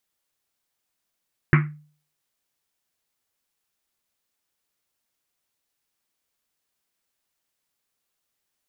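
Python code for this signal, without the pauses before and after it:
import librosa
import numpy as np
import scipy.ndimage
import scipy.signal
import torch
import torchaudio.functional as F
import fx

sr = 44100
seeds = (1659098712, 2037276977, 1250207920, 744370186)

y = fx.risset_drum(sr, seeds[0], length_s=1.1, hz=150.0, decay_s=0.45, noise_hz=1700.0, noise_width_hz=1200.0, noise_pct=25)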